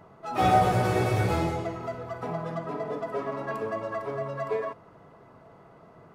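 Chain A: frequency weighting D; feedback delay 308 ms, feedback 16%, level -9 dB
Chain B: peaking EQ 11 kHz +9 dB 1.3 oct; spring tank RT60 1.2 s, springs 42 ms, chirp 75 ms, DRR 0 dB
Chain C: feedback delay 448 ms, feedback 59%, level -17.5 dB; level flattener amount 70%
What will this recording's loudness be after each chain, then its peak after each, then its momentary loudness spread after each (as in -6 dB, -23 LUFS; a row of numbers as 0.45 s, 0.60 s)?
-27.0 LUFS, -26.0 LUFS, -22.0 LUFS; -9.0 dBFS, -7.5 dBFS, -8.0 dBFS; 13 LU, 12 LU, 7 LU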